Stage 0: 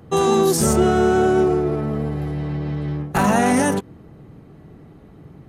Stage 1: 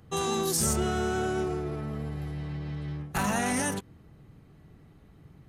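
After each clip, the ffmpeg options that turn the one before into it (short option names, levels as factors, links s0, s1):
-af "equalizer=f=410:w=0.33:g=-10,volume=0.631"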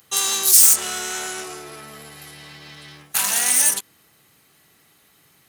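-af "aeval=exprs='0.188*sin(PI/2*2.82*val(0)/0.188)':c=same,aderivative,volume=2.37"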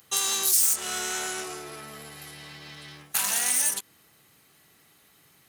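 -af "acompressor=threshold=0.0891:ratio=2,volume=0.75"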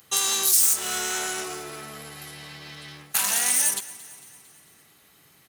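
-af "aecho=1:1:225|450|675|900|1125:0.112|0.064|0.0365|0.0208|0.0118,volume=1.33"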